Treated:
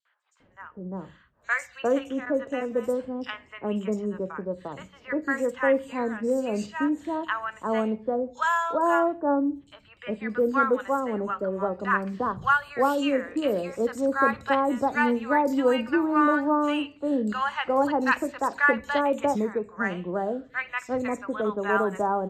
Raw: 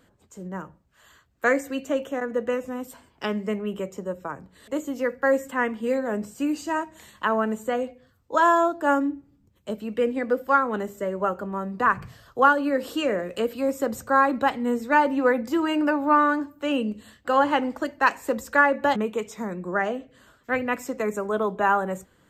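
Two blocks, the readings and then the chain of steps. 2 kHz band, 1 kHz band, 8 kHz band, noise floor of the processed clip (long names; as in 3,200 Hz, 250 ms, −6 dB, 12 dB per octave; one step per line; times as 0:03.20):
−1.0 dB, −2.5 dB, −4.0 dB, −57 dBFS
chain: three-band delay without the direct sound highs, mids, lows 50/400 ms, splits 1,000/4,700 Hz
low-pass that shuts in the quiet parts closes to 2,500 Hz, open at −19 dBFS
pitch vibrato 0.44 Hz 11 cents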